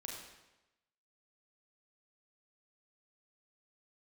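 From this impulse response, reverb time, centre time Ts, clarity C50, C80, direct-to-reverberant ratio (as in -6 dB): 1.0 s, 59 ms, 2.0 dB, 4.0 dB, -1.5 dB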